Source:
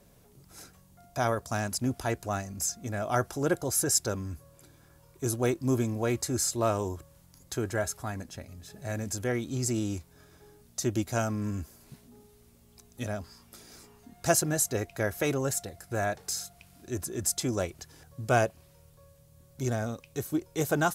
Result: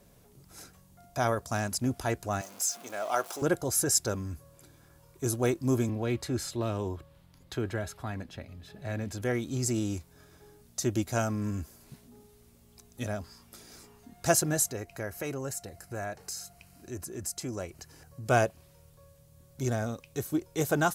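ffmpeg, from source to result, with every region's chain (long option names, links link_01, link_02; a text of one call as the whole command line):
ffmpeg -i in.wav -filter_complex "[0:a]asettb=1/sr,asplit=3[link_01][link_02][link_03];[link_01]atrim=end=2.414[link_04];[link_02]atrim=start=2.41:end=3.42,asetpts=PTS-STARTPTS,afade=type=in:duration=0.004:curve=qsin,afade=type=out:start_time=1.006:duration=0.004:curve=qsin,aeval=exprs='val(0)+0.5*0.0106*sgn(val(0))':channel_layout=same,highpass=510,equalizer=frequency=1800:width=5.7:gain=-6.5[link_05];[link_03]atrim=start=3.416[link_06];[link_04][link_05]acrossfade=duration=0.004:curve1=hsin:curve2=qsin[link_07];[link_07][link_06]acrossfade=duration=0.004:curve1=qsin:curve2=hsin,asettb=1/sr,asplit=3[link_08][link_09][link_10];[link_08]atrim=end=5.894[link_11];[link_09]atrim=start=5.89:end=9.22,asetpts=PTS-STARTPTS,afade=type=in:duration=0.004:curve=qsin,afade=type=out:start_time=3.326:duration=0.004:curve=qsin,acrossover=split=380|3000[link_12][link_13][link_14];[link_13]acompressor=threshold=-34dB:ratio=6:attack=3.2:release=140:knee=2.83:detection=peak[link_15];[link_12][link_15][link_14]amix=inputs=3:normalize=0,highshelf=frequency=4800:width_type=q:width=1.5:gain=-9[link_16];[link_10]atrim=start=9.216[link_17];[link_11][link_16]acrossfade=duration=0.004:curve1=hsin:curve2=qsin[link_18];[link_18][link_17]acrossfade=duration=0.004:curve1=qsin:curve2=hsin,asettb=1/sr,asplit=3[link_19][link_20][link_21];[link_19]atrim=end=14.714[link_22];[link_20]atrim=start=14.71:end=18.26,asetpts=PTS-STARTPTS,afade=type=in:duration=0.004:curve=qsin,afade=type=out:start_time=3.546:duration=0.004:curve=qsin,acompressor=threshold=-43dB:ratio=1.5:attack=3.2:release=140:knee=1:detection=peak,bandreject=frequency=3500:width=6.2[link_23];[link_21]atrim=start=18.256[link_24];[link_22][link_23]acrossfade=duration=0.004:curve1=hsin:curve2=qsin[link_25];[link_25][link_24]acrossfade=duration=0.004:curve1=qsin:curve2=hsin" out.wav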